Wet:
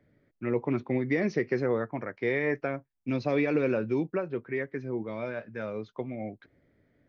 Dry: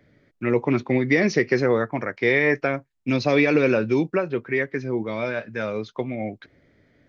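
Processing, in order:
high-shelf EQ 2,600 Hz −11 dB
level −7 dB

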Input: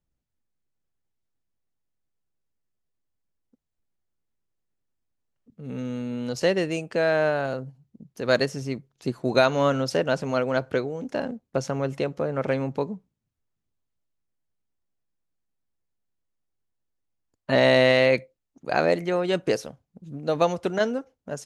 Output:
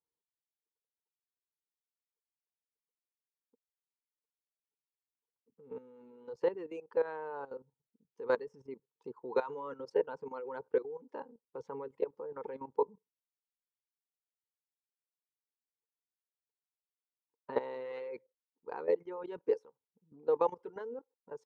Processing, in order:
reverb reduction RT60 1.5 s
pair of resonant band-passes 650 Hz, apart 1 octave
output level in coarse steps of 15 dB
level +4 dB

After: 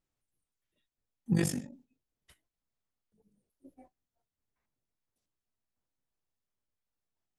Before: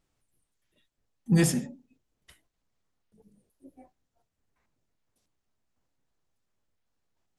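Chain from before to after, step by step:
0:01.33–0:01.73: amplitude modulation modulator 48 Hz, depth 65%
noise gate −55 dBFS, range −7 dB
level −3.5 dB

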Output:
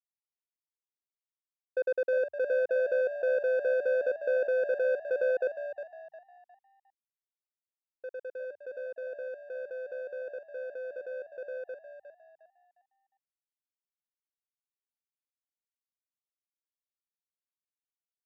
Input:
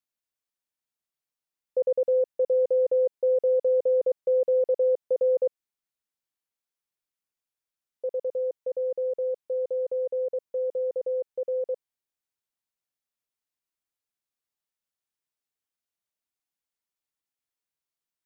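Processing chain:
bass and treble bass −6 dB, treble −14 dB
power curve on the samples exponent 2
on a send: echo with shifted repeats 357 ms, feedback 32%, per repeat +68 Hz, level −10 dB
on the sum: level −3.5 dB

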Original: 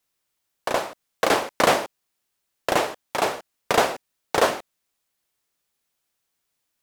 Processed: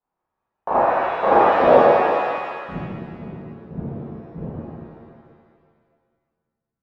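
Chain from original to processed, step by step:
low-pass filter sweep 890 Hz → 160 Hz, 0:01.35–0:02.80
reverb with rising layers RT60 1.9 s, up +7 semitones, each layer −8 dB, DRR −11.5 dB
level −7 dB

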